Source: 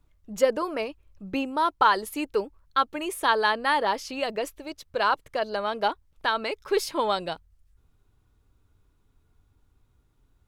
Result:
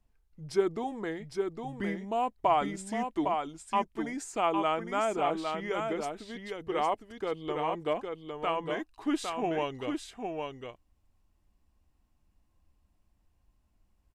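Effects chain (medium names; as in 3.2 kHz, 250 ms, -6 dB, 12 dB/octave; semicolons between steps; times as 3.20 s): speed mistake 45 rpm record played at 33 rpm; dynamic bell 3.7 kHz, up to -4 dB, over -41 dBFS, Q 1.2; delay 808 ms -5 dB; trim -6 dB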